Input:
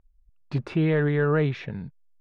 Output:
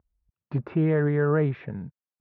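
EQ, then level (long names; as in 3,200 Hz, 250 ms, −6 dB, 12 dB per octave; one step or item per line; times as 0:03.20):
high-pass filter 75 Hz
low-pass filter 1,600 Hz 12 dB per octave
0.0 dB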